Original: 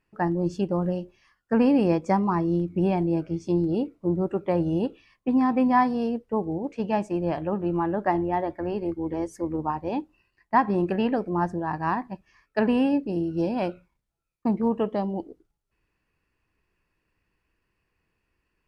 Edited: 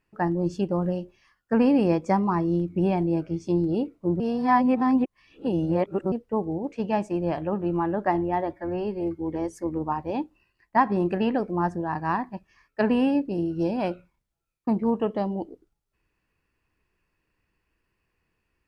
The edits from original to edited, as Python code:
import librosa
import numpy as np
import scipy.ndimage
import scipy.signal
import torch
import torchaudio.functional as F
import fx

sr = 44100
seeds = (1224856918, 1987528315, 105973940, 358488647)

y = fx.edit(x, sr, fx.reverse_span(start_s=4.2, length_s=1.92),
    fx.stretch_span(start_s=8.53, length_s=0.44, factor=1.5), tone=tone)